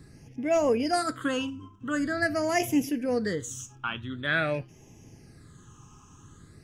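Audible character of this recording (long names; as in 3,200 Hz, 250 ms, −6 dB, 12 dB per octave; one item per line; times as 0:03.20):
phaser sweep stages 8, 0.46 Hz, lowest notch 580–1,300 Hz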